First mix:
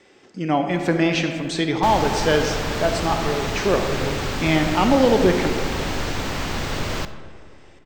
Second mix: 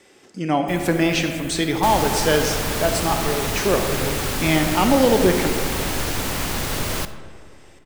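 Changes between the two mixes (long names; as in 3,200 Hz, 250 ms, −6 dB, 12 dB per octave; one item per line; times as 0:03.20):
first sound +11.5 dB
master: remove moving average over 4 samples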